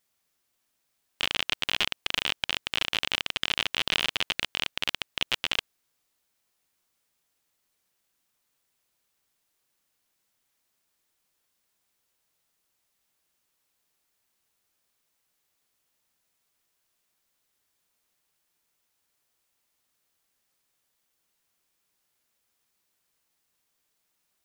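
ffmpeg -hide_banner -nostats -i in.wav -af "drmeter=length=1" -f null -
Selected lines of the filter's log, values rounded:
Channel 1: DR: 22.8
Overall DR: 22.8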